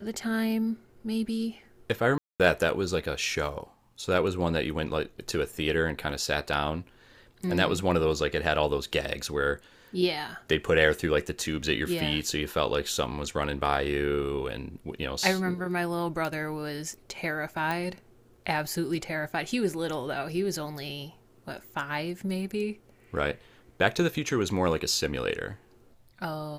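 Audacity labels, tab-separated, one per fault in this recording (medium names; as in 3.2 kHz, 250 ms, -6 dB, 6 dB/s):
2.180000	2.400000	dropout 217 ms
17.710000	17.710000	pop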